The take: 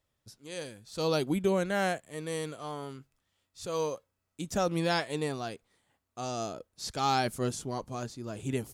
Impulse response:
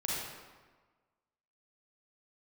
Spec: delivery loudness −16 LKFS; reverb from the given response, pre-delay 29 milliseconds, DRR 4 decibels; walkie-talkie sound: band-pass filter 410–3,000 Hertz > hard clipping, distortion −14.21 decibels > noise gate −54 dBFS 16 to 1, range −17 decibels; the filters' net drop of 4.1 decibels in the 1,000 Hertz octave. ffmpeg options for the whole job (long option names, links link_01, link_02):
-filter_complex "[0:a]equalizer=frequency=1000:width_type=o:gain=-5.5,asplit=2[link_01][link_02];[1:a]atrim=start_sample=2205,adelay=29[link_03];[link_02][link_03]afir=irnorm=-1:irlink=0,volume=-9dB[link_04];[link_01][link_04]amix=inputs=2:normalize=0,highpass=410,lowpass=3000,asoftclip=type=hard:threshold=-27dB,agate=range=-17dB:threshold=-54dB:ratio=16,volume=21dB"